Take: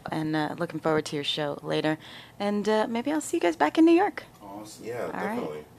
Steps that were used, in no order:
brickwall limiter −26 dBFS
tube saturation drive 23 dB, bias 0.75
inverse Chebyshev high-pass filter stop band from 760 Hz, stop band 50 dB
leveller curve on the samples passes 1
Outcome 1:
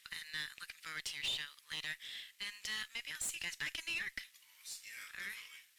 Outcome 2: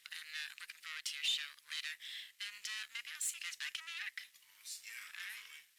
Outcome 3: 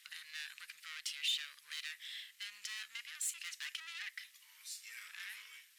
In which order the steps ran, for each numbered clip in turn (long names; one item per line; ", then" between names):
inverse Chebyshev high-pass filter, then brickwall limiter, then leveller curve on the samples, then tube saturation
tube saturation, then brickwall limiter, then inverse Chebyshev high-pass filter, then leveller curve on the samples
tube saturation, then brickwall limiter, then leveller curve on the samples, then inverse Chebyshev high-pass filter